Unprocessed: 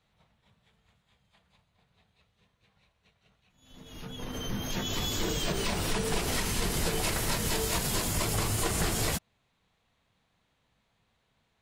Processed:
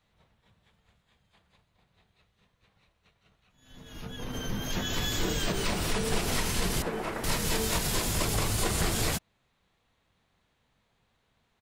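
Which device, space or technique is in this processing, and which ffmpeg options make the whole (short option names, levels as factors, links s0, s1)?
octave pedal: -filter_complex "[0:a]asplit=2[s0][s1];[s1]asetrate=22050,aresample=44100,atempo=2,volume=0.501[s2];[s0][s2]amix=inputs=2:normalize=0,asettb=1/sr,asplit=3[s3][s4][s5];[s3]atrim=end=6.824[s6];[s4]atrim=start=6.82:end=7.24,asetpts=PTS-STARTPTS,afade=t=in:d=0.004:c=qsin,afade=t=out:st=0.416:d=0.004:c=qsin,acrossover=split=190 2100:gain=0.224 1 0.126[s7][s8][s9];[s7][s8][s9]amix=inputs=3:normalize=0[s10];[s5]atrim=start=7.236[s11];[s6][s10]acrossfade=d=0.004:c1=hsin:c2=qsin[s12];[s12][s11]acrossfade=d=0.004:c1=qsin:c2=hsin"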